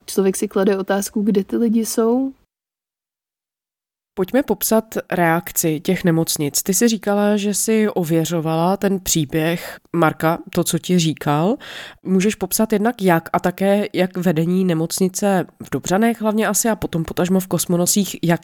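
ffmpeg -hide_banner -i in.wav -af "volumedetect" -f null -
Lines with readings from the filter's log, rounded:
mean_volume: -18.7 dB
max_volume: -1.4 dB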